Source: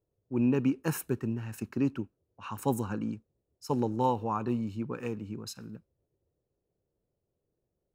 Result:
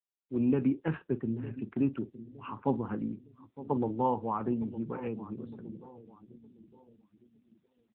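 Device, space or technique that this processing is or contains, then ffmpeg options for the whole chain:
mobile call with aggressive noise cancelling: -filter_complex "[0:a]highpass=120,asplit=2[link_01][link_02];[link_02]adelay=44,volume=-13.5dB[link_03];[link_01][link_03]amix=inputs=2:normalize=0,asplit=2[link_04][link_05];[link_05]adelay=911,lowpass=frequency=1300:poles=1,volume=-15dB,asplit=2[link_06][link_07];[link_07]adelay=911,lowpass=frequency=1300:poles=1,volume=0.46,asplit=2[link_08][link_09];[link_09]adelay=911,lowpass=frequency=1300:poles=1,volume=0.46,asplit=2[link_10][link_11];[link_11]adelay=911,lowpass=frequency=1300:poles=1,volume=0.46[link_12];[link_04][link_06][link_08][link_10][link_12]amix=inputs=5:normalize=0,afftdn=noise_reduction=26:noise_floor=-49" -ar 8000 -c:a libopencore_amrnb -b:a 7950

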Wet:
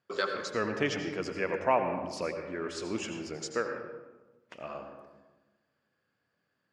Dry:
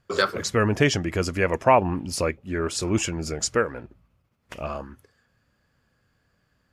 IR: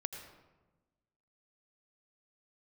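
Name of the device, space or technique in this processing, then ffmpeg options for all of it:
supermarket ceiling speaker: -filter_complex "[0:a]highpass=210,lowpass=5400[link_01];[1:a]atrim=start_sample=2205[link_02];[link_01][link_02]afir=irnorm=-1:irlink=0,volume=-7.5dB"

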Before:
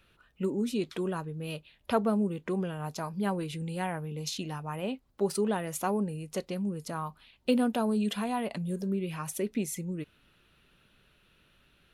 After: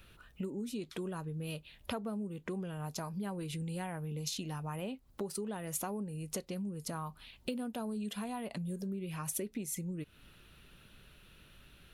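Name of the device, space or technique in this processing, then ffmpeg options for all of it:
ASMR close-microphone chain: -af "lowshelf=frequency=150:gain=7,acompressor=threshold=-41dB:ratio=5,highshelf=frequency=6100:gain=7.5,volume=3dB"

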